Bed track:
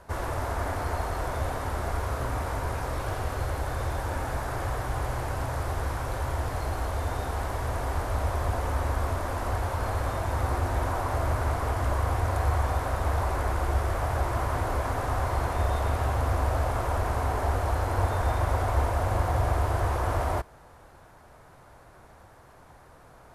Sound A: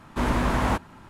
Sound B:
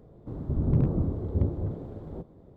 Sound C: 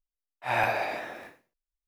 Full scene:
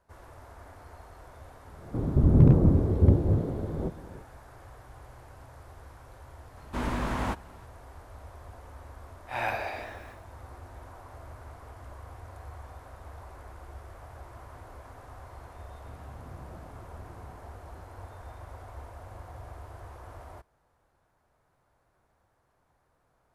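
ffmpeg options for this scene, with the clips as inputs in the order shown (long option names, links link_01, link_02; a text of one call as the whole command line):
ffmpeg -i bed.wav -i cue0.wav -i cue1.wav -i cue2.wav -filter_complex "[2:a]asplit=2[link_01][link_02];[0:a]volume=-19dB[link_03];[link_01]dynaudnorm=framelen=110:gausssize=3:maxgain=10dB[link_04];[link_02]acompressor=threshold=-28dB:ratio=6:attack=3.2:release=140:knee=1:detection=peak[link_05];[link_04]atrim=end=2.56,asetpts=PTS-STARTPTS,volume=-3dB,afade=type=in:duration=0.004:curve=hsin,afade=type=out:start_time=2.556:duration=0.004:curve=hsin,adelay=1670[link_06];[1:a]atrim=end=1.09,asetpts=PTS-STARTPTS,volume=-7dB,afade=type=in:duration=0.004:curve=hsin,afade=type=out:start_time=1.086:duration=0.004:curve=hsin,adelay=6570[link_07];[3:a]atrim=end=1.87,asetpts=PTS-STARTPTS,volume=-5dB,afade=type=in:duration=0.004:curve=hsin,afade=type=out:start_time=1.866:duration=0.004:curve=hsin,adelay=8850[link_08];[link_05]atrim=end=2.56,asetpts=PTS-STARTPTS,volume=-17dB,afade=type=in:duration=0.004:curve=hsin,afade=type=out:start_time=2.556:duration=0.004:curve=hsin,adelay=15590[link_09];[link_03][link_06][link_07][link_08][link_09]amix=inputs=5:normalize=0" out.wav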